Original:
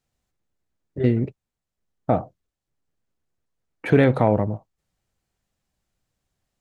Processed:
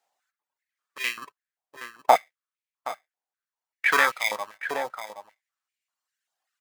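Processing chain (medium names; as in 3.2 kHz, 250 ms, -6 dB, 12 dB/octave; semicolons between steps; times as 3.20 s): in parallel at -7 dB: sample-and-hold 31×; on the sum: reverb removal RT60 2 s; delay 771 ms -12 dB; step-sequenced high-pass 5.1 Hz 780–2300 Hz; trim +1.5 dB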